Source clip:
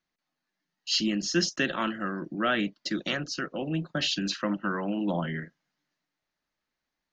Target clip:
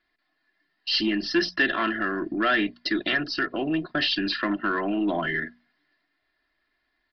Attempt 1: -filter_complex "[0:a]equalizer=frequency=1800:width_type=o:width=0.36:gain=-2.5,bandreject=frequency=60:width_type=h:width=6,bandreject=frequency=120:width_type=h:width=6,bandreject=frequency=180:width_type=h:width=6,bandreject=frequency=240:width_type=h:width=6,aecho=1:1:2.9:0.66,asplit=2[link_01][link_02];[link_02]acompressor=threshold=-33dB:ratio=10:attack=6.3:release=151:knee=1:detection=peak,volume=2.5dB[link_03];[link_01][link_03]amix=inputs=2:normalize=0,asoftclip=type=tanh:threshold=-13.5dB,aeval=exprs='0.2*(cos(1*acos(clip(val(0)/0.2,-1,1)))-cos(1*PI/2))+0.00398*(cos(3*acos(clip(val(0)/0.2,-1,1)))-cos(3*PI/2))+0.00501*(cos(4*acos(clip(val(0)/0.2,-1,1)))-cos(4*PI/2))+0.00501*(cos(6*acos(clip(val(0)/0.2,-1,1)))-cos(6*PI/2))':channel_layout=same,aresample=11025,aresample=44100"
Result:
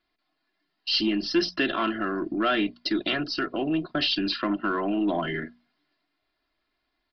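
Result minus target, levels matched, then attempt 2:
2,000 Hz band −4.5 dB
-filter_complex "[0:a]equalizer=frequency=1800:width_type=o:width=0.36:gain=9,bandreject=frequency=60:width_type=h:width=6,bandreject=frequency=120:width_type=h:width=6,bandreject=frequency=180:width_type=h:width=6,bandreject=frequency=240:width_type=h:width=6,aecho=1:1:2.9:0.66,asplit=2[link_01][link_02];[link_02]acompressor=threshold=-33dB:ratio=10:attack=6.3:release=151:knee=1:detection=peak,volume=2.5dB[link_03];[link_01][link_03]amix=inputs=2:normalize=0,asoftclip=type=tanh:threshold=-13.5dB,aeval=exprs='0.2*(cos(1*acos(clip(val(0)/0.2,-1,1)))-cos(1*PI/2))+0.00398*(cos(3*acos(clip(val(0)/0.2,-1,1)))-cos(3*PI/2))+0.00501*(cos(4*acos(clip(val(0)/0.2,-1,1)))-cos(4*PI/2))+0.00501*(cos(6*acos(clip(val(0)/0.2,-1,1)))-cos(6*PI/2))':channel_layout=same,aresample=11025,aresample=44100"

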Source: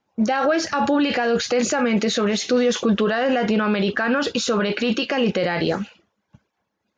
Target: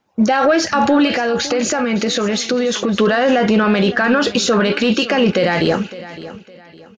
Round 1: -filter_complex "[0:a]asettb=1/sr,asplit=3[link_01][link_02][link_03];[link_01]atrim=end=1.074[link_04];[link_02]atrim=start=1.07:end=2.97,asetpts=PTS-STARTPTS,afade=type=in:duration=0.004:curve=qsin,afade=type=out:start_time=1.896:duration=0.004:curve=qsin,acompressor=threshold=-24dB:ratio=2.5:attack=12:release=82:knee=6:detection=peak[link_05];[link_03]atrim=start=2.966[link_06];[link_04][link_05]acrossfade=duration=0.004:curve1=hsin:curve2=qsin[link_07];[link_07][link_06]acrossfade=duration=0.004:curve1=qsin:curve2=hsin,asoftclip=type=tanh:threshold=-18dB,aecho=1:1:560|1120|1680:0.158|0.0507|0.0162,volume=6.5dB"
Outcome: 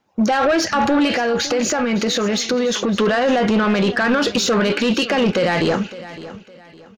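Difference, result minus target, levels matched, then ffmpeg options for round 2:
soft clipping: distortion +13 dB
-filter_complex "[0:a]asettb=1/sr,asplit=3[link_01][link_02][link_03];[link_01]atrim=end=1.074[link_04];[link_02]atrim=start=1.07:end=2.97,asetpts=PTS-STARTPTS,afade=type=in:duration=0.004:curve=qsin,afade=type=out:start_time=1.896:duration=0.004:curve=qsin,acompressor=threshold=-24dB:ratio=2.5:attack=12:release=82:knee=6:detection=peak[link_05];[link_03]atrim=start=2.966[link_06];[link_04][link_05]acrossfade=duration=0.004:curve1=hsin:curve2=qsin[link_07];[link_07][link_06]acrossfade=duration=0.004:curve1=qsin:curve2=hsin,asoftclip=type=tanh:threshold=-9dB,aecho=1:1:560|1120|1680:0.158|0.0507|0.0162,volume=6.5dB"

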